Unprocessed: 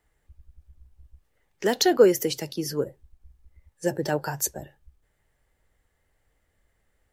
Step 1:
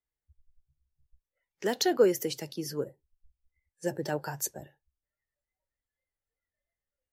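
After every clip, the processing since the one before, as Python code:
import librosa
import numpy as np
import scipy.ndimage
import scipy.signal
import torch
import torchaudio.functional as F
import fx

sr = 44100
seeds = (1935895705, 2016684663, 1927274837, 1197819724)

y = fx.noise_reduce_blind(x, sr, reduce_db=19)
y = F.gain(torch.from_numpy(y), -6.0).numpy()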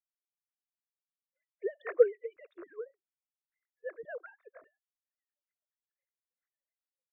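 y = fx.sine_speech(x, sr)
y = fx.fixed_phaser(y, sr, hz=840.0, stages=6)
y = fx.hpss(y, sr, part='harmonic', gain_db=-9)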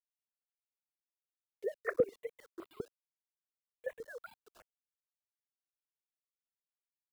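y = fx.level_steps(x, sr, step_db=12)
y = np.where(np.abs(y) >= 10.0 ** (-58.5 / 20.0), y, 0.0)
y = fx.phaser_held(y, sr, hz=5.0, low_hz=330.0, high_hz=1700.0)
y = F.gain(torch.from_numpy(y), 7.0).numpy()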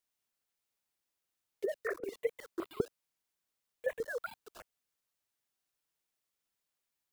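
y = fx.over_compress(x, sr, threshold_db=-36.0, ratio=-0.5)
y = F.gain(torch.from_numpy(y), 5.0).numpy()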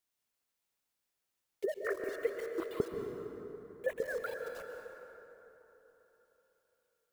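y = fx.rev_plate(x, sr, seeds[0], rt60_s=3.8, hf_ratio=0.45, predelay_ms=115, drr_db=3.0)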